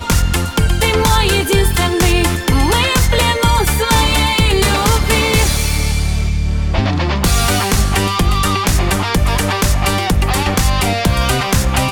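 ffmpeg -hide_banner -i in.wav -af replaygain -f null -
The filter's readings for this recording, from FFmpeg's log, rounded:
track_gain = -3.1 dB
track_peak = 0.498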